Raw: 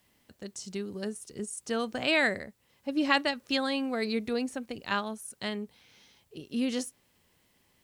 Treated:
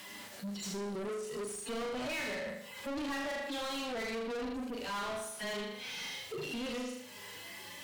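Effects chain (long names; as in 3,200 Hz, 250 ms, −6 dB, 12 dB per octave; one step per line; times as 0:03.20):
harmonic-percussive split with one part muted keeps harmonic
downward compressor 2.5 to 1, threshold −52 dBFS, peak gain reduction 19.5 dB
flanger 0.28 Hz, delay 9.8 ms, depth 2.8 ms, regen +61%
flutter between parallel walls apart 6.8 metres, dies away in 0.56 s
mid-hump overdrive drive 34 dB, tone 6,400 Hz, clips at −34 dBFS
level +3 dB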